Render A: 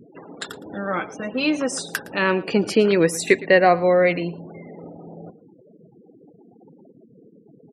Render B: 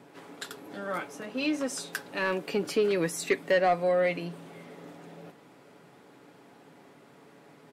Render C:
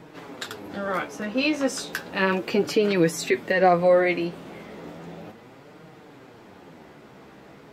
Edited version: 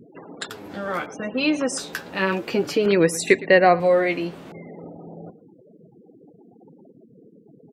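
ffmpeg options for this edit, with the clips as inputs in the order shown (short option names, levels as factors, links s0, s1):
-filter_complex "[2:a]asplit=3[s0][s1][s2];[0:a]asplit=4[s3][s4][s5][s6];[s3]atrim=end=0.502[s7];[s0]atrim=start=0.498:end=1.062[s8];[s4]atrim=start=1.058:end=1.782[s9];[s1]atrim=start=1.778:end=2.862[s10];[s5]atrim=start=2.858:end=3.802[s11];[s2]atrim=start=3.798:end=4.522[s12];[s6]atrim=start=4.518[s13];[s7][s8]acrossfade=d=0.004:c1=hsin:c2=hsin[s14];[s14][s9]acrossfade=d=0.004:c1=hsin:c2=hsin[s15];[s15][s10]acrossfade=d=0.004:c1=hsin:c2=hsin[s16];[s16][s11]acrossfade=d=0.004:c1=hsin:c2=hsin[s17];[s17][s12]acrossfade=d=0.004:c1=hsin:c2=hsin[s18];[s18][s13]acrossfade=d=0.004:c1=hsin:c2=hsin"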